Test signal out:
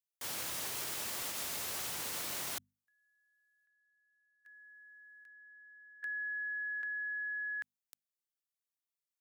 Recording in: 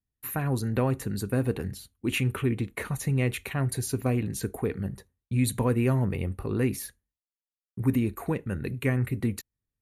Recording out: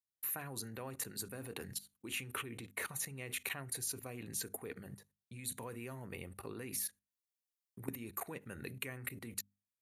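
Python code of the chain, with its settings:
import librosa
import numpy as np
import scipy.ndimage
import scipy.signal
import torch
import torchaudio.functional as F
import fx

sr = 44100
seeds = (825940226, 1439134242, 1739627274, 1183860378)

y = fx.high_shelf(x, sr, hz=4700.0, db=7.5)
y = fx.level_steps(y, sr, step_db=19)
y = scipy.signal.sosfilt(scipy.signal.butter(2, 95.0, 'highpass', fs=sr, output='sos'), y)
y = fx.low_shelf(y, sr, hz=430.0, db=-9.5)
y = fx.hum_notches(y, sr, base_hz=50, count=5)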